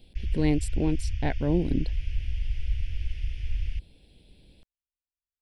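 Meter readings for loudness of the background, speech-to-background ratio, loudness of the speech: -34.5 LUFS, 5.5 dB, -29.0 LUFS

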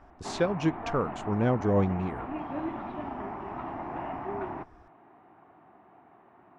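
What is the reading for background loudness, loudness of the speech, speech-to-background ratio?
-37.5 LUFS, -29.0 LUFS, 8.5 dB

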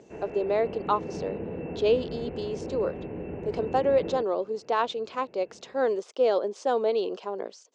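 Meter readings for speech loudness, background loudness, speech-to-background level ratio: -28.5 LUFS, -37.0 LUFS, 8.5 dB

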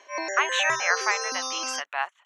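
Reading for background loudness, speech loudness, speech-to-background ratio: -29.0 LUFS, -27.0 LUFS, 2.0 dB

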